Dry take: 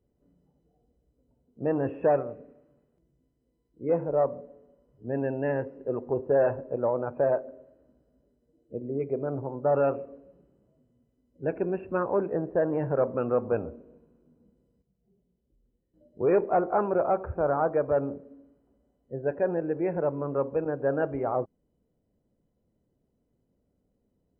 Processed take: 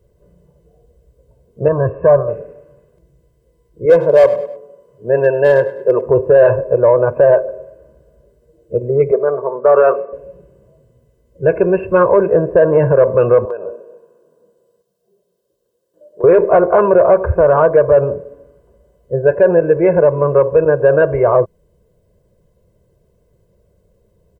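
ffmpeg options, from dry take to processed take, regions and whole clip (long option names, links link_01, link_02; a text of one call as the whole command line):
ffmpeg -i in.wav -filter_complex "[0:a]asettb=1/sr,asplit=3[link_01][link_02][link_03];[link_01]atrim=end=1.684[link_04];[link_02]atrim=start=1.68:end=2.28,asetpts=PTS-STARTPTS,afade=type=in:duration=0.004:curve=qsin,afade=type=out:start_time=0.596:duration=0.004:curve=qsin,lowpass=frequency=1300:width=0.5412,lowpass=frequency=1300:width=1.3066,equalizer=frequency=490:width=2:gain=-11,aecho=1:1:1.8:0.49,atrim=end_sample=26460[link_05];[link_03]atrim=start=2.276[link_06];[link_04][link_05]acrossfade=duration=0.004:curve1=hsin:curve2=qsin[link_07];[link_07][link_06]acrossfade=duration=0.004:curve1=qsin:curve2=hsin,asettb=1/sr,asplit=3[link_08][link_09][link_10];[link_08]atrim=end=3.854[link_11];[link_09]atrim=start=3.85:end=6.06,asetpts=PTS-STARTPTS,afade=type=in:duration=0.004:curve=qsin,afade=type=out:start_time=2.206:duration=0.004:curve=qsin,highpass=190,volume=20dB,asoftclip=hard,volume=-20dB,aecho=1:1:101|202|303:0.141|0.0537|0.0204,atrim=end_sample=97461[link_12];[link_10]atrim=start=6.056[link_13];[link_11][link_12]acrossfade=duration=0.004:curve1=hsin:curve2=qsin[link_14];[link_14][link_13]acrossfade=duration=0.004:curve1=qsin:curve2=hsin,asettb=1/sr,asplit=3[link_15][link_16][link_17];[link_15]atrim=end=9.114[link_18];[link_16]atrim=start=9.11:end=10.13,asetpts=PTS-STARTPTS,afade=type=in:duration=0.004:curve=qsin,afade=type=out:start_time=1.016:duration=0.004:curve=qsin,highpass=frequency=220:width=0.5412,highpass=frequency=220:width=1.3066,equalizer=frequency=270:width_type=q:width=4:gain=-8,equalizer=frequency=490:width_type=q:width=4:gain=-4,equalizer=frequency=850:width_type=q:width=4:gain=-4,equalizer=frequency=1200:width_type=q:width=4:gain=8,lowpass=frequency=2100:width=0.5412,lowpass=frequency=2100:width=1.3066,aecho=1:1:4.5:0.33,atrim=end_sample=44982[link_19];[link_17]atrim=start=10.126[link_20];[link_18][link_19]acrossfade=duration=0.004:curve1=hsin:curve2=qsin[link_21];[link_21][link_20]acrossfade=duration=0.004:curve1=qsin:curve2=hsin,asettb=1/sr,asplit=3[link_22][link_23][link_24];[link_22]atrim=end=13.454[link_25];[link_23]atrim=start=13.45:end=16.24,asetpts=PTS-STARTPTS,afade=type=in:duration=0.004:curve=qsin,afade=type=out:start_time=2.786:duration=0.004:curve=qsin,highpass=430,acompressor=threshold=-38dB:ratio=10:attack=3.2:release=140:knee=1:detection=peak,equalizer=frequency=2200:width_type=o:width=0.46:gain=-12.5[link_26];[link_24]atrim=start=16.236[link_27];[link_25][link_26]acrossfade=duration=0.004:curve1=hsin:curve2=qsin[link_28];[link_28][link_27]acrossfade=duration=0.004:curve1=qsin:curve2=hsin,aecho=1:1:1.9:0.97,acontrast=68,alimiter=limit=-10dB:level=0:latency=1:release=43,volume=8dB" out.wav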